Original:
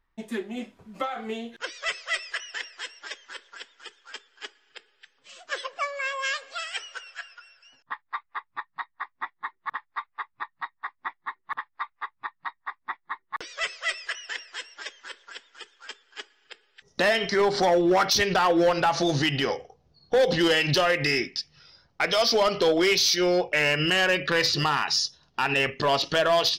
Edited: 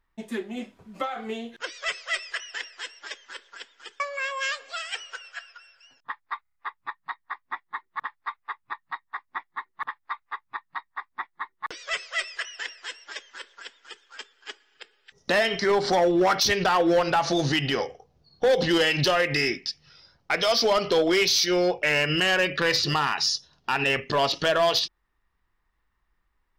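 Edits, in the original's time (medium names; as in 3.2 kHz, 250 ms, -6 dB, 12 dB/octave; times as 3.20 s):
4.00–5.82 s: delete
8.24 s: stutter 0.03 s, 5 plays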